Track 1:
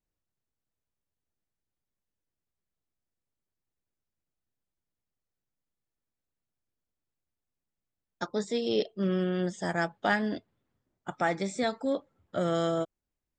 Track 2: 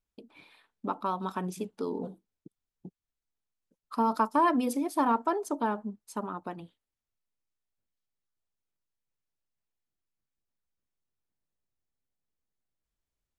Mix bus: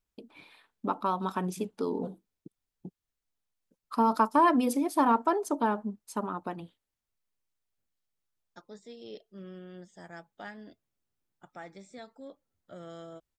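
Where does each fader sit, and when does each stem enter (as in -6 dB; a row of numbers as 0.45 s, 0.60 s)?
-17.0 dB, +2.0 dB; 0.35 s, 0.00 s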